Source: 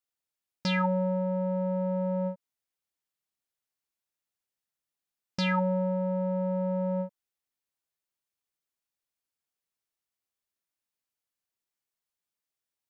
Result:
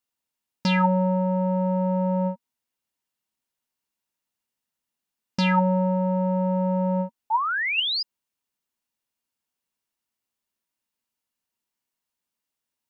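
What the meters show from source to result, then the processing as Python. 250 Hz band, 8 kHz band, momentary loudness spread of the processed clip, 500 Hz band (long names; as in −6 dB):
+6.5 dB, can't be measured, 7 LU, +3.5 dB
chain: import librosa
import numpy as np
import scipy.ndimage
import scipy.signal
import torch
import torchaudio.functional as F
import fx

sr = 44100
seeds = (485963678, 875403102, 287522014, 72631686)

y = fx.spec_paint(x, sr, seeds[0], shape='rise', start_s=7.3, length_s=0.73, low_hz=840.0, high_hz=5100.0, level_db=-29.0)
y = fx.small_body(y, sr, hz=(230.0, 940.0, 2800.0), ring_ms=45, db=8)
y = y * librosa.db_to_amplitude(3.5)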